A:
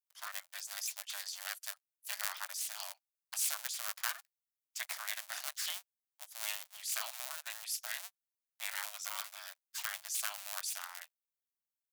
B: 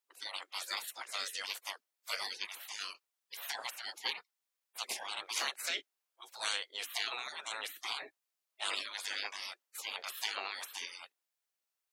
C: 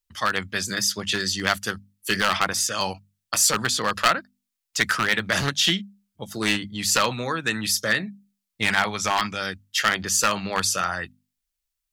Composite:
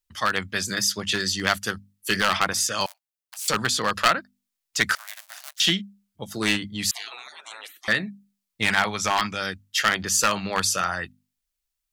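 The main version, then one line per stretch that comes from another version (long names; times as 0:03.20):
C
0:02.86–0:03.48: punch in from A
0:04.95–0:05.60: punch in from A
0:06.91–0:07.88: punch in from B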